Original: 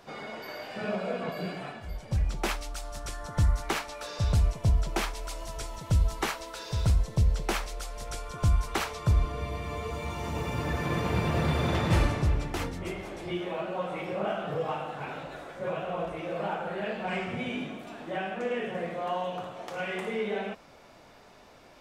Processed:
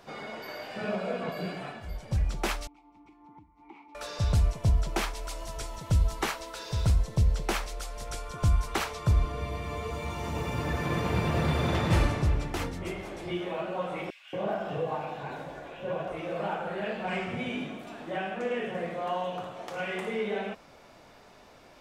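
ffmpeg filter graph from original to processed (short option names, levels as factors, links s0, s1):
-filter_complex "[0:a]asettb=1/sr,asplit=3[s0][s1][s2];[s0]atrim=end=2.674[s3];[s1]atrim=start=2.67:end=3.95,asetpts=PTS-STARTPTS,afade=t=in:d=0.004:c=qsin,afade=t=out:st=1.276:d=0.004:c=qsin,highshelf=f=3400:g=-11,acompressor=threshold=0.0224:ratio=6:attack=3.2:release=140:knee=1:detection=peak,asplit=3[s4][s5][s6];[s4]bandpass=f=300:t=q:w=8,volume=1[s7];[s5]bandpass=f=870:t=q:w=8,volume=0.501[s8];[s6]bandpass=f=2240:t=q:w=8,volume=0.355[s9];[s7][s8][s9]amix=inputs=3:normalize=0[s10];[s2]atrim=start=3.946[s11];[s3][s10]acrossfade=d=0.004:c1=hsin:c2=qsin[s12];[s12][s11]acrossfade=d=0.004:c1=qsin:c2=hsin,asettb=1/sr,asplit=3[s13][s14][s15];[s13]atrim=end=14.104[s16];[s14]atrim=start=14.1:end=16.12,asetpts=PTS-STARTPTS,afade=t=in:d=0.004:c=qsin,afade=t=out:st=2.016:d=0.004:c=qsin,asuperstop=centerf=1300:order=4:qfactor=8,equalizer=f=9100:t=o:w=0.78:g=-4,acrossover=split=2300[s17][s18];[s17]adelay=230[s19];[s19][s18]amix=inputs=2:normalize=0,atrim=end_sample=89082[s20];[s15]atrim=start=16.116[s21];[s16][s20]acrossfade=d=0.004:c1=hsin:c2=qsin[s22];[s22][s21]acrossfade=d=0.004:c1=qsin:c2=hsin"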